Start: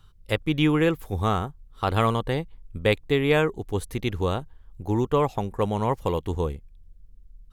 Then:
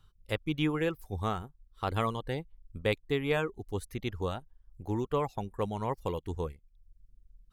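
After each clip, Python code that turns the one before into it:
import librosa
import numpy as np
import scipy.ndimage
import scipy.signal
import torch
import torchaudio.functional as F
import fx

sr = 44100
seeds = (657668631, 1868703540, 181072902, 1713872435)

y = fx.dereverb_blind(x, sr, rt60_s=0.61)
y = y * librosa.db_to_amplitude(-7.5)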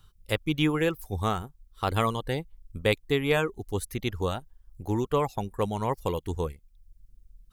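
y = fx.high_shelf(x, sr, hz=5600.0, db=8.0)
y = y * librosa.db_to_amplitude(4.5)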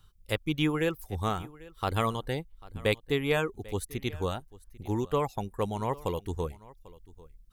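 y = x + 10.0 ** (-21.0 / 20.0) * np.pad(x, (int(794 * sr / 1000.0), 0))[:len(x)]
y = y * librosa.db_to_amplitude(-2.5)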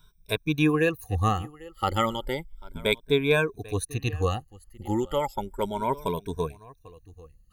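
y = fx.spec_ripple(x, sr, per_octave=1.6, drift_hz=0.33, depth_db=19)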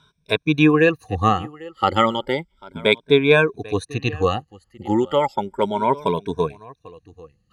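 y = fx.bandpass_edges(x, sr, low_hz=140.0, high_hz=4600.0)
y = y * librosa.db_to_amplitude(8.0)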